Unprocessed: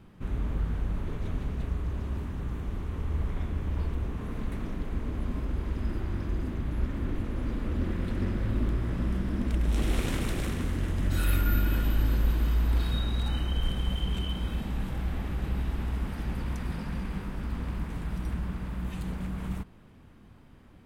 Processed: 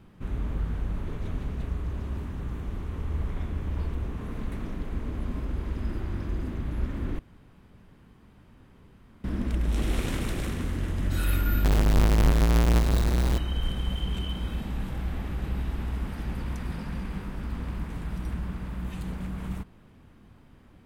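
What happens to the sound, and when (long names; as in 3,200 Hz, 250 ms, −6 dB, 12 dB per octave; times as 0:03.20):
0:07.19–0:09.24: fill with room tone
0:11.64–0:13.38: each half-wave held at its own peak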